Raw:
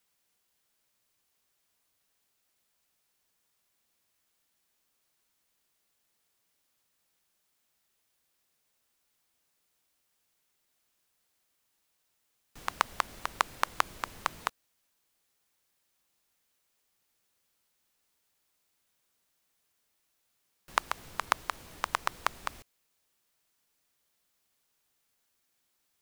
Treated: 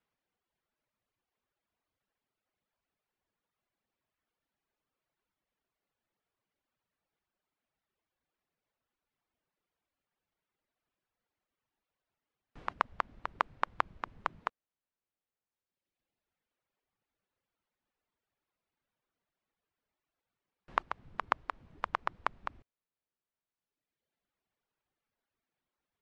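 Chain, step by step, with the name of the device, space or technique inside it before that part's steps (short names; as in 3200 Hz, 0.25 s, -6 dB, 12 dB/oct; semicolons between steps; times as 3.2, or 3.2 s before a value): phone in a pocket (LPF 3400 Hz 12 dB/oct; high shelf 2100 Hz -10 dB); reverb removal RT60 1.8 s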